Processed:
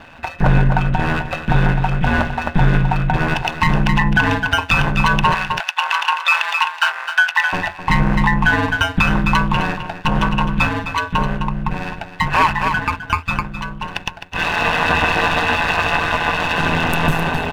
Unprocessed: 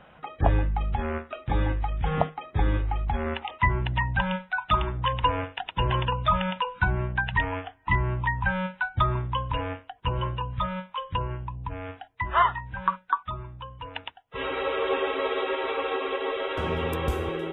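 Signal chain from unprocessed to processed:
lower of the sound and its delayed copy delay 1.1 ms
0:05.34–0:07.53: high-pass filter 940 Hz 24 dB per octave
single-tap delay 259 ms −11 dB
ring modulation 83 Hz
hollow resonant body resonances 1,500/2,600 Hz, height 12 dB, ringing for 40 ms
boost into a limiter +17.5 dB
level −2.5 dB

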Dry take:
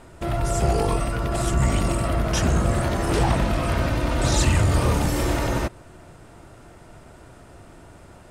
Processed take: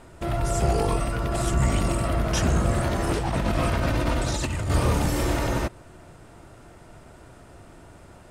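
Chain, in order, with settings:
0:03.12–0:04.70: compressor whose output falls as the input rises −23 dBFS, ratio −1
level −1.5 dB

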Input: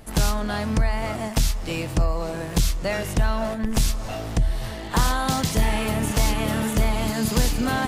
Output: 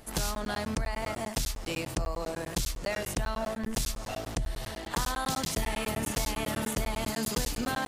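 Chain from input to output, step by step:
bass and treble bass −5 dB, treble +3 dB
downward compressor 2.5 to 1, threshold −24 dBFS, peak gain reduction 5 dB
regular buffer underruns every 0.10 s, samples 512, zero, from 0:00.35
level −4 dB

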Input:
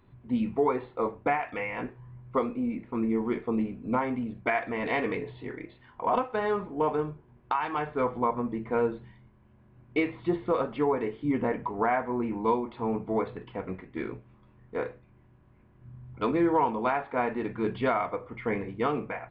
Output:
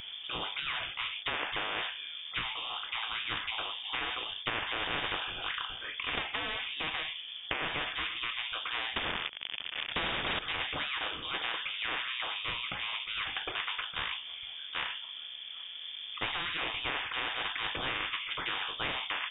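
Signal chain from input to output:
0:08.96–0:10.39: leveller curve on the samples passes 5
voice inversion scrambler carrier 3,400 Hz
every bin compressed towards the loudest bin 10 to 1
level −5.5 dB

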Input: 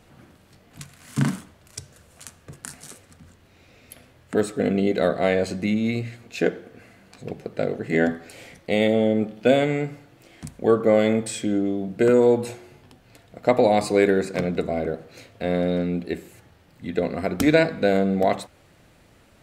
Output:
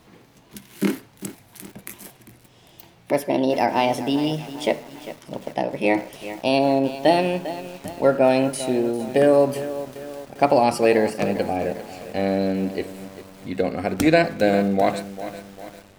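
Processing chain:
gliding playback speed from 144% → 99%
feedback echo at a low word length 399 ms, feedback 55%, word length 6 bits, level −13 dB
level +1 dB

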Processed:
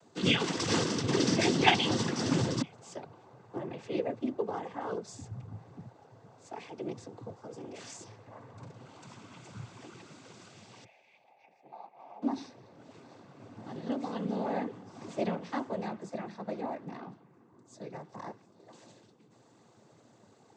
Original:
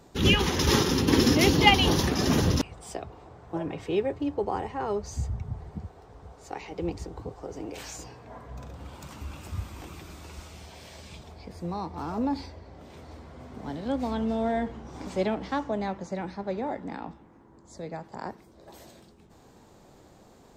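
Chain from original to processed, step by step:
0:10.84–0:12.22: pair of resonant band-passes 1,300 Hz, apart 1.6 octaves
cochlear-implant simulation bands 16
level −5 dB

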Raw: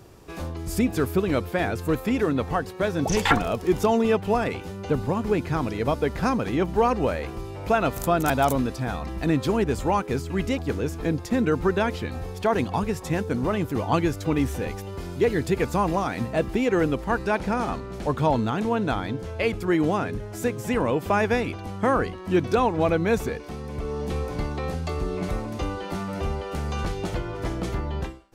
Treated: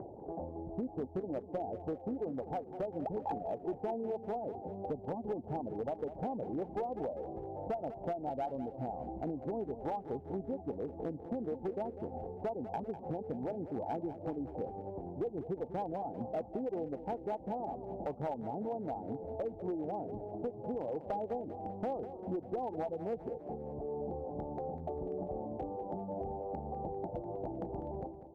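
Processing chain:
variable-slope delta modulation 64 kbit/s
Chebyshev low-pass filter 840 Hz, order 6
upward compression, threshold −31 dBFS
spectral tilt +4.5 dB per octave
downward compressor 5 to 1, threshold −37 dBFS, peak gain reduction 14 dB
reverb reduction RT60 0.52 s
asymmetric clip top −33.5 dBFS
repeating echo 198 ms, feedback 54%, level −12 dB
level +2.5 dB

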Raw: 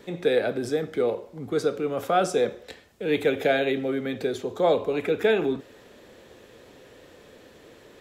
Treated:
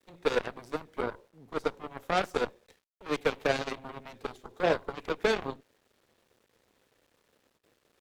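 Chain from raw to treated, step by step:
centre clipping without the shift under −47 dBFS
noise gate with hold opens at −41 dBFS
harmonic generator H 6 −22 dB, 7 −15 dB, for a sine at −8.5 dBFS
level −5 dB

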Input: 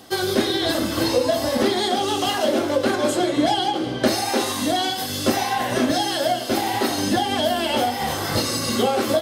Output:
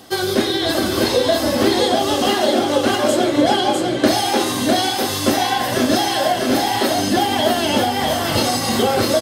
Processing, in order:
single-tap delay 652 ms −3.5 dB
level +2.5 dB

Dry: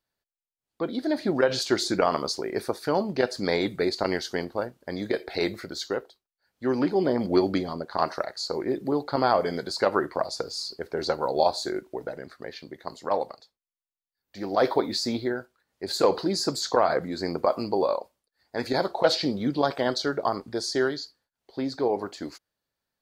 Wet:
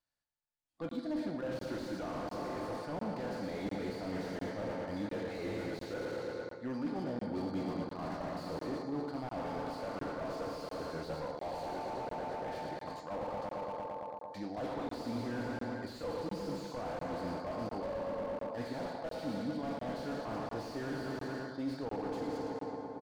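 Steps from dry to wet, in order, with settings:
feedback delay network reverb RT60 2.5 s, low-frequency decay 0.7×, high-frequency decay 0.6×, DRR 6.5 dB
harmonic and percussive parts rebalanced percussive −6 dB
on a send: feedback echo with a low-pass in the loop 114 ms, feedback 84%, low-pass 4,400 Hz, level −8 dB
on the sum: noise reduction from a noise print of the clip's start 7 dB
parametric band 390 Hz −11.5 dB 0.4 octaves
reversed playback
downward compressor 10 to 1, threshold −35 dBFS, peak gain reduction 16 dB
reversed playback
downsampling to 22,050 Hz
regular buffer underruns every 0.70 s, samples 1,024, zero, from 0:00.89
slew-rate limiting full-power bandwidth 8.1 Hz
level +2 dB

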